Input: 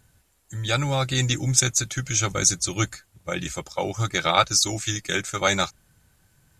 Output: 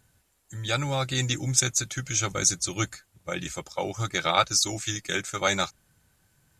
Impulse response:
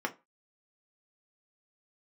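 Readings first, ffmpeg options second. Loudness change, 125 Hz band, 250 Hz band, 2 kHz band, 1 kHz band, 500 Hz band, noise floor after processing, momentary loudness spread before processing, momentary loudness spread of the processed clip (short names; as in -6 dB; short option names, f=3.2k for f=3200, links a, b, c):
-3.0 dB, -5.0 dB, -3.5 dB, -3.0 dB, -3.0 dB, -3.0 dB, -68 dBFS, 11 LU, 11 LU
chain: -af "lowshelf=f=93:g=-5,volume=-3dB"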